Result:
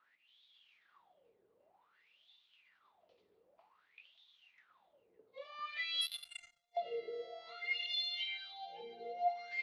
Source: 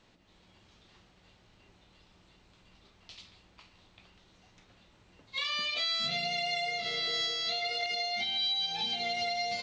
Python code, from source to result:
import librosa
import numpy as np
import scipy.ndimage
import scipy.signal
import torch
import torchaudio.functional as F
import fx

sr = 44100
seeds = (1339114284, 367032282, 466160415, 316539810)

y = fx.wah_lfo(x, sr, hz=0.53, low_hz=430.0, high_hz=3600.0, q=11.0)
y = y + 10.0 ** (-22.0 / 20.0) * np.pad(y, (int(560 * sr / 1000.0), 0))[:len(y)]
y = fx.power_curve(y, sr, exponent=3.0, at=(6.01, 6.77))
y = y * 10.0 ** (7.0 / 20.0)